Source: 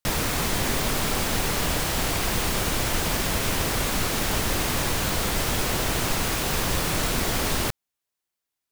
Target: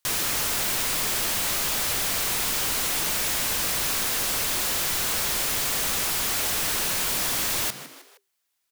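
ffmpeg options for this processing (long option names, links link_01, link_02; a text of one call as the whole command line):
ffmpeg -i in.wav -filter_complex "[0:a]tiltshelf=frequency=670:gain=-4.5,asplit=4[link_01][link_02][link_03][link_04];[link_02]adelay=156,afreqshift=130,volume=-21.5dB[link_05];[link_03]adelay=312,afreqshift=260,volume=-28.2dB[link_06];[link_04]adelay=468,afreqshift=390,volume=-35dB[link_07];[link_01][link_05][link_06][link_07]amix=inputs=4:normalize=0,aeval=exprs='0.0531*(abs(mod(val(0)/0.0531+3,4)-2)-1)':channel_layout=same,volume=4.5dB" out.wav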